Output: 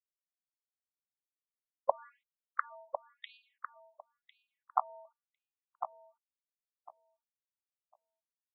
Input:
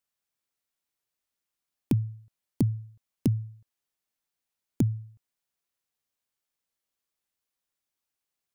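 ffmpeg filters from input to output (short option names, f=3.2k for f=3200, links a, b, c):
-filter_complex "[0:a]highpass=130,agate=range=-27dB:threshold=-58dB:ratio=16:detection=peak,highshelf=f=1.6k:t=q:w=3:g=-9,dynaudnorm=f=270:g=7:m=11dB,aeval=exprs='sgn(val(0))*max(abs(val(0))-0.00531,0)':c=same,asetrate=52444,aresample=44100,atempo=0.840896,asplit=2[a][b];[b]adelay=1052,lowpass=f=890:p=1,volume=-5.5dB,asplit=2[c][d];[d]adelay=1052,lowpass=f=890:p=1,volume=0.21,asplit=2[e][f];[f]adelay=1052,lowpass=f=890:p=1,volume=0.21[g];[a][c][e][g]amix=inputs=4:normalize=0,afftfilt=real='re*between(b*sr/1024,700*pow(3400/700,0.5+0.5*sin(2*PI*0.96*pts/sr))/1.41,700*pow(3400/700,0.5+0.5*sin(2*PI*0.96*pts/sr))*1.41)':imag='im*between(b*sr/1024,700*pow(3400/700,0.5+0.5*sin(2*PI*0.96*pts/sr))/1.41,700*pow(3400/700,0.5+0.5*sin(2*PI*0.96*pts/sr))*1.41)':win_size=1024:overlap=0.75,volume=8.5dB"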